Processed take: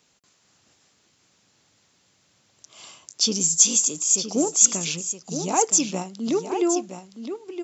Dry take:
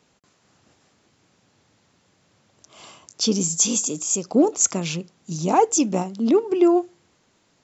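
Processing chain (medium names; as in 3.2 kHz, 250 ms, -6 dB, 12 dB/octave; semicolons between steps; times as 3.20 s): treble shelf 2.2 kHz +11 dB; on a send: delay 968 ms -9 dB; on the sum: trim -6.5 dB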